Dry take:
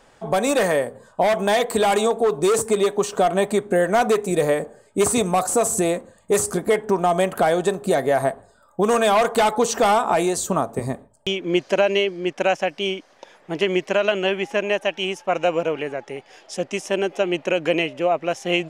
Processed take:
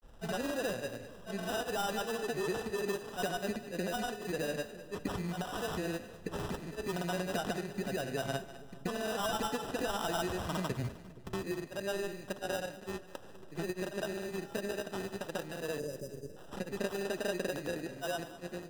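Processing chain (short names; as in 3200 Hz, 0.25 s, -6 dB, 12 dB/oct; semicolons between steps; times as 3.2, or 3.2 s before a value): ending faded out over 0.78 s; low shelf 180 Hz +12 dB; in parallel at +1 dB: limiter -17.5 dBFS, peak gain reduction 14 dB; on the sum: compressor 4:1, threshold -27 dBFS, peak gain reduction 15 dB; sample-rate reducer 2200 Hz, jitter 0%; grains, pitch spread up and down by 0 st; spectral delete 15.79–16.37, 640–4800 Hz; split-band echo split 480 Hz, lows 0.471 s, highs 0.202 s, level -13 dB; on a send at -20 dB: reverb RT60 0.35 s, pre-delay 15 ms; on the sum: three-band expander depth 40%; gain -7.5 dB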